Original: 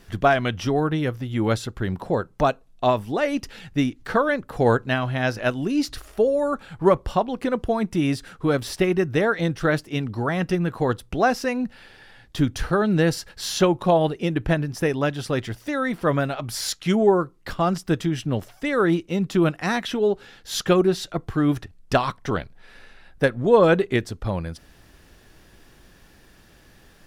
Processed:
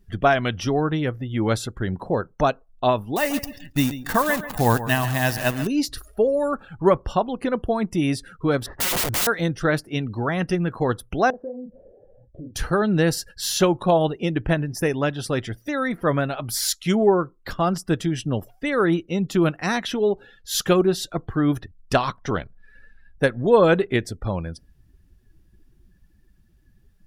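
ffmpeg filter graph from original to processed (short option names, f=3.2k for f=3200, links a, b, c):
-filter_complex "[0:a]asettb=1/sr,asplit=3[a][b][c];[a]atrim=end=3.164[d];[b]atrim=start=3.16:end=5.67,asetpts=PTS-STARTPTS,afade=t=in:d=0.004:c=qsin,afade=t=out:st=2.506:d=0.004:c=qsin,aecho=1:1:1.1:0.5,atrim=end_sample=110691,acrusher=bits=6:dc=4:mix=0:aa=0.000001,aecho=1:1:138|276|414:0.224|0.0672|0.0201,atrim=end_sample=110691[e];[c]atrim=start=5.666[f];[d][e]acrossfade=d=0.004:c1=hsin:c2=qsin[g];[g][f]acrossfade=d=0.004:c1=qsin:c2=hsin,asettb=1/sr,asplit=3[h][i][j];[h]atrim=end=8.664[k];[i]atrim=start=8.66:end=9.27,asetpts=PTS-STARTPTS,afade=t=in:d=0.004:c=qsin,afade=t=out:st=0.606:d=0.004:c=qsin,lowpass=f=1.8k:w=0.5412,lowpass=f=1.8k:w=1.3066,acontrast=32,aeval=exprs='(mod(11.9*val(0)+1,2)-1)/11.9':c=same[l];[j]atrim=start=9.266[m];[k][l]acrossfade=d=0.004:c1=hsin:c2=qsin[n];[n][m]acrossfade=d=0.004:c1=qsin:c2=hsin,asettb=1/sr,asplit=3[o][p][q];[o]atrim=end=11.304[r];[p]atrim=start=11.3:end=12.56,asetpts=PTS-STARTPTS,afade=t=in:d=0.004:c=qsin,afade=t=out:st=1.256:d=0.004:c=qsin,asplit=2[s][t];[t]adelay=32,volume=-4dB[u];[s][u]amix=inputs=2:normalize=0,atrim=end_sample=55566,acompressor=threshold=-36dB:ratio=8:attack=3.2:release=140:knee=1:detection=peak,lowpass=f=570:t=q:w=3.6[v];[q]atrim=start=12.556[w];[r][v]acrossfade=d=0.004:c1=hsin:c2=qsin[x];[x][w]acrossfade=d=0.004:c1=qsin:c2=hsin,highshelf=f=8.3k:g=11,afftdn=nr=23:nf=-43"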